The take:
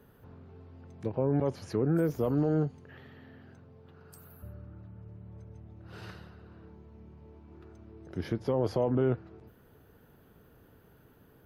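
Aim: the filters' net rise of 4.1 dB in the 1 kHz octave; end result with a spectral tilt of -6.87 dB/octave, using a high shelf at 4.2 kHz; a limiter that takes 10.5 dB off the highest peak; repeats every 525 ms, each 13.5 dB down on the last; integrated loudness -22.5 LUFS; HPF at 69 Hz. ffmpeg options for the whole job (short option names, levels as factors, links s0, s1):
-af "highpass=69,equalizer=f=1000:t=o:g=5,highshelf=f=4200:g=5.5,alimiter=level_in=1.33:limit=0.0631:level=0:latency=1,volume=0.75,aecho=1:1:525|1050:0.211|0.0444,volume=7.08"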